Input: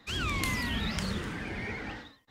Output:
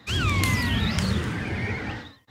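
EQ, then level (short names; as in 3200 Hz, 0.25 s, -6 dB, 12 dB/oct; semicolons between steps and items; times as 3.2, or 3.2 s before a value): HPF 63 Hz; bell 100 Hz +8.5 dB 1.1 oct; +6.0 dB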